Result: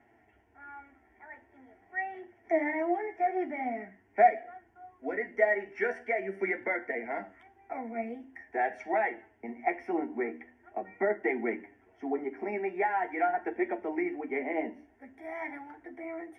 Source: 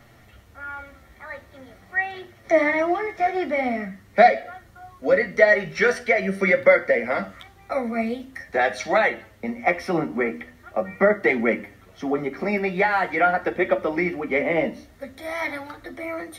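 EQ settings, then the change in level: band-pass 550 Hz, Q 0.55; fixed phaser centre 810 Hz, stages 8; -5.0 dB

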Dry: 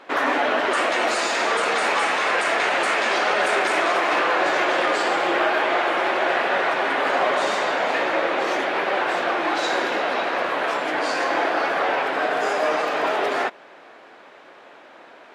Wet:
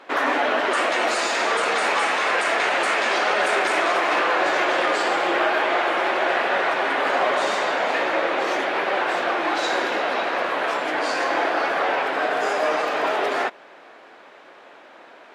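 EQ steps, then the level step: low shelf 110 Hz -7.5 dB; 0.0 dB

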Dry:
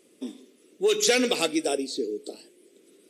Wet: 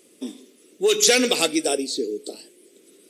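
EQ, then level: high shelf 4100 Hz +6 dB; +3.0 dB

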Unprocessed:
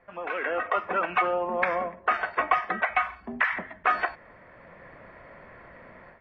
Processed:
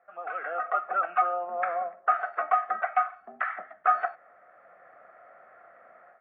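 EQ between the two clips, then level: double band-pass 970 Hz, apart 0.8 oct; +3.5 dB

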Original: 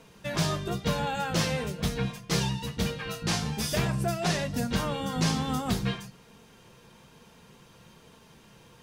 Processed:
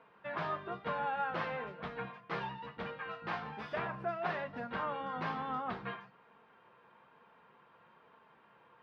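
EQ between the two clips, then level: band-pass 1200 Hz, Q 1.2; air absorption 370 m; +1.0 dB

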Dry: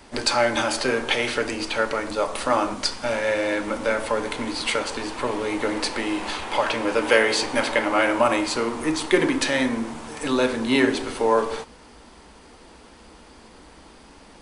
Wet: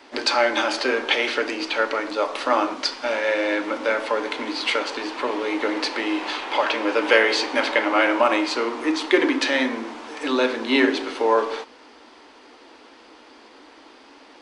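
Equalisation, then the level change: air absorption 230 m; RIAA curve recording; resonant low shelf 220 Hz -7.5 dB, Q 3; +2.0 dB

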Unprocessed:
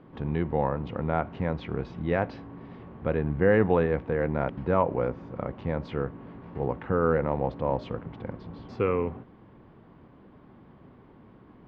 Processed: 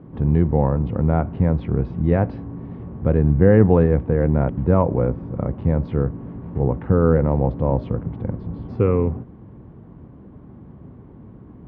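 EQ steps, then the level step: HPF 59 Hz; tilt -4 dB/oct; +1.5 dB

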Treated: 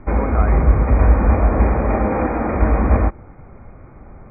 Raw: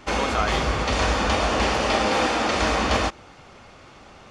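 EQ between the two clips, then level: brick-wall FIR low-pass 2500 Hz; air absorption 210 m; tilt -3.5 dB/oct; 0.0 dB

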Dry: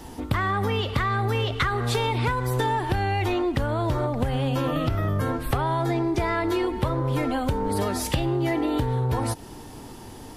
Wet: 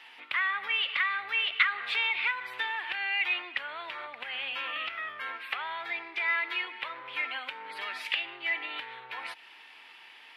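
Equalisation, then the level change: resonant high-pass 2400 Hz, resonance Q 2.8; air absorption 460 m; +5.5 dB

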